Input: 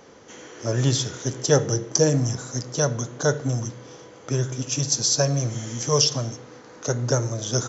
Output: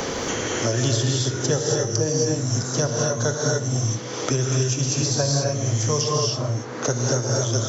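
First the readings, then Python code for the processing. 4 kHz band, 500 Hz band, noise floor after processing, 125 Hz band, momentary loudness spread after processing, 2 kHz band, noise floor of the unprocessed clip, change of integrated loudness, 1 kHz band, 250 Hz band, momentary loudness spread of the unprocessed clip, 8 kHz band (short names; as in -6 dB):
+1.0 dB, +1.0 dB, -31 dBFS, +2.5 dB, 5 LU, +3.5 dB, -47 dBFS, +1.0 dB, +3.5 dB, +1.5 dB, 13 LU, n/a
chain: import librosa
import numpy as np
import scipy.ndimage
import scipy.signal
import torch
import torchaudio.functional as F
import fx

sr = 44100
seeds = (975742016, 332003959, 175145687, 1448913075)

y = fx.rev_gated(x, sr, seeds[0], gate_ms=300, shape='rising', drr_db=-3.0)
y = fx.band_squash(y, sr, depth_pct=100)
y = y * 10.0 ** (-4.0 / 20.0)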